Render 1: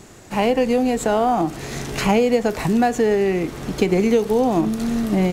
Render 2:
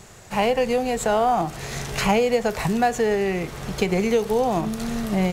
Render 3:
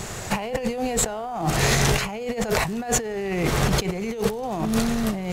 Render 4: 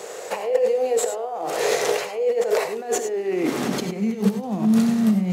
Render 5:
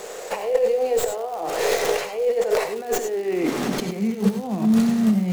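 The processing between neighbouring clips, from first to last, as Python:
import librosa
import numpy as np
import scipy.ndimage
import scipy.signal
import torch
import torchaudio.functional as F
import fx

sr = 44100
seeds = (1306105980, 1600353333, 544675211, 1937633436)

y1 = fx.peak_eq(x, sr, hz=290.0, db=-13.5, octaves=0.61)
y2 = fx.over_compress(y1, sr, threshold_db=-31.0, ratio=-1.0)
y2 = y2 * librosa.db_to_amplitude(5.5)
y3 = fx.filter_sweep_highpass(y2, sr, from_hz=480.0, to_hz=200.0, start_s=2.53, end_s=4.12, q=6.0)
y3 = fx.rev_gated(y3, sr, seeds[0], gate_ms=120, shape='rising', drr_db=7.5)
y3 = y3 * librosa.db_to_amplitude(-5.5)
y4 = fx.tracing_dist(y3, sr, depth_ms=0.1)
y4 = fx.dmg_crackle(y4, sr, seeds[1], per_s=410.0, level_db=-33.0)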